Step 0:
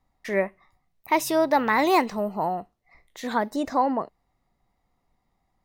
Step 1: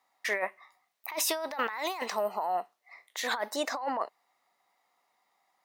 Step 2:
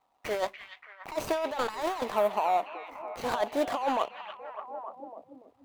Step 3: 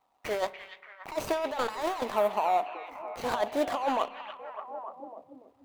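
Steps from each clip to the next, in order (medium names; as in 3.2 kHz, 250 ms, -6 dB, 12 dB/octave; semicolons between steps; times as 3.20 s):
high-pass 790 Hz 12 dB/octave; compressor with a negative ratio -33 dBFS, ratio -1; trim +1 dB
median filter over 25 samples; repeats whose band climbs or falls 289 ms, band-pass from 2.5 kHz, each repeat -0.7 oct, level -5 dB; trim +5.5 dB
spring tank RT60 1.2 s, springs 30 ms, chirp 50 ms, DRR 17 dB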